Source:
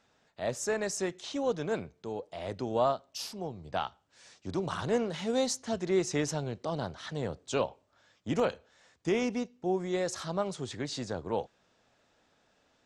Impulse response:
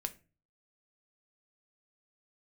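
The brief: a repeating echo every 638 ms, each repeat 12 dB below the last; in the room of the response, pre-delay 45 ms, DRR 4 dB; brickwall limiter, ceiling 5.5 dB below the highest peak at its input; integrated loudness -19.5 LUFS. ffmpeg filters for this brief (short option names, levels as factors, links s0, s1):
-filter_complex "[0:a]alimiter=limit=0.0794:level=0:latency=1,aecho=1:1:638|1276|1914:0.251|0.0628|0.0157,asplit=2[s0][s1];[1:a]atrim=start_sample=2205,adelay=45[s2];[s1][s2]afir=irnorm=-1:irlink=0,volume=0.668[s3];[s0][s3]amix=inputs=2:normalize=0,volume=4.73"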